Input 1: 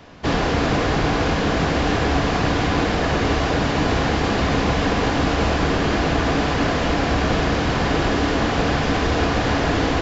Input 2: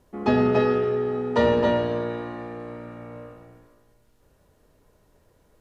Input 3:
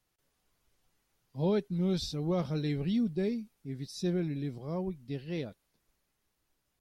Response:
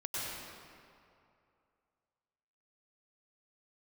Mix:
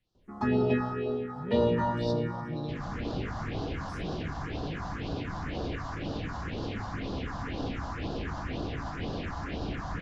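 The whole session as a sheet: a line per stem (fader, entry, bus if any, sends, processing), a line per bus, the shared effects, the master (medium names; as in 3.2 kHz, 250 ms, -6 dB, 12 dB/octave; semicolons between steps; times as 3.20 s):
-13.5 dB, 2.45 s, bus A, send -5 dB, peak limiter -12.5 dBFS, peak gain reduction 6.5 dB
-6.0 dB, 0.15 s, no bus, send -9.5 dB, none
+0.5 dB, 0.00 s, bus A, send -14.5 dB, compression, threshold -35 dBFS, peak gain reduction 10 dB
bus A: 0.0 dB, peak limiter -31.5 dBFS, peak gain reduction 9 dB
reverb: on, RT60 2.5 s, pre-delay 91 ms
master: low-pass 6.1 kHz 12 dB/octave; phase shifter stages 4, 2 Hz, lowest notch 400–2100 Hz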